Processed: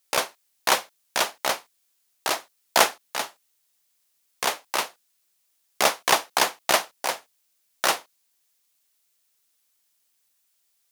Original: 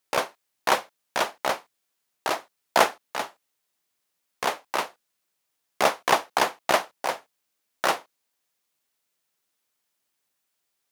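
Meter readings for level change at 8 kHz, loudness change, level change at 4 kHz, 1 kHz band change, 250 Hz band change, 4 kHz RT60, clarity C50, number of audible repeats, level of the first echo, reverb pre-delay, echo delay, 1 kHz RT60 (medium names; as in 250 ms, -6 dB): +7.5 dB, +1.5 dB, +5.0 dB, -0.5 dB, -2.0 dB, no reverb, no reverb, no echo, no echo, no reverb, no echo, no reverb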